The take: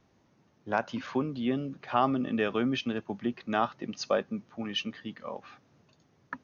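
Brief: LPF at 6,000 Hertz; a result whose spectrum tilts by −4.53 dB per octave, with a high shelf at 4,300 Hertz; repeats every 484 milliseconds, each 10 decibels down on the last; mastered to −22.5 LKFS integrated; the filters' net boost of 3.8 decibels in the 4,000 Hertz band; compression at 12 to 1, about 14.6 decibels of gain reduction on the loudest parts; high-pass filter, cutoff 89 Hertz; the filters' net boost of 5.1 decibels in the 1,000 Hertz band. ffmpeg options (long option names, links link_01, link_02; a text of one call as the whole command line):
ffmpeg -i in.wav -af "highpass=89,lowpass=6000,equalizer=frequency=1000:width_type=o:gain=6.5,equalizer=frequency=4000:width_type=o:gain=3.5,highshelf=frequency=4300:gain=4,acompressor=threshold=-31dB:ratio=12,aecho=1:1:484|968|1452|1936:0.316|0.101|0.0324|0.0104,volume=14.5dB" out.wav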